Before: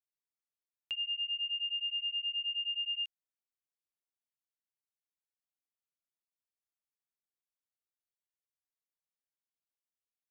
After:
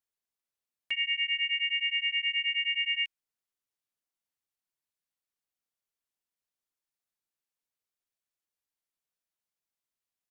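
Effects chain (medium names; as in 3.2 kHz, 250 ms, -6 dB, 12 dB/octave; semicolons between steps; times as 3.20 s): dynamic bell 2.4 kHz, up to +7 dB, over -50 dBFS, Q 3; harmony voices -7 st -9 dB, -4 st -3 dB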